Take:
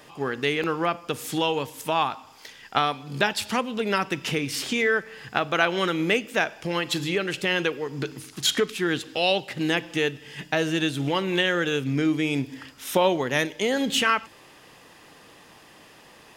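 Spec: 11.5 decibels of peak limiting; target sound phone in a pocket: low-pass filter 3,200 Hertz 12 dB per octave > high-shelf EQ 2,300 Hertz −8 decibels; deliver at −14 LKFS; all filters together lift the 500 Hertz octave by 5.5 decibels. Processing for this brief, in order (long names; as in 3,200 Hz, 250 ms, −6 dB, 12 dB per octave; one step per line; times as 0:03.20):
parametric band 500 Hz +7 dB
brickwall limiter −13.5 dBFS
low-pass filter 3,200 Hz 12 dB per octave
high-shelf EQ 2,300 Hz −8 dB
level +12.5 dB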